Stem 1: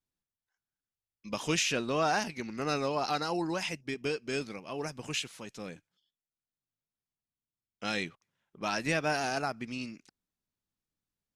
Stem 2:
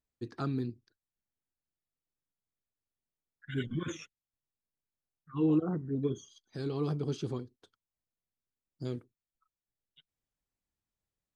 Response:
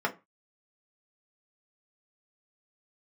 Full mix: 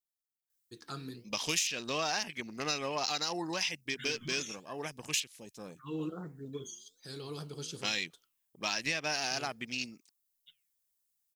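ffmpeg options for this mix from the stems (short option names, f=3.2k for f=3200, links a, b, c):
-filter_complex "[0:a]afwtdn=0.00562,equalizer=f=1.4k:w=5.5:g=-6,volume=-5.5dB[a];[1:a]highshelf=f=6.2k:g=5,flanger=delay=6.1:depth=8.6:regen=88:speed=1.2:shape=triangular,adelay=500,volume=-8dB,asplit=2[b][c];[c]volume=-16.5dB[d];[2:a]atrim=start_sample=2205[e];[d][e]afir=irnorm=-1:irlink=0[f];[a][b][f]amix=inputs=3:normalize=0,crystalizer=i=9.5:c=0,acompressor=threshold=-29dB:ratio=6"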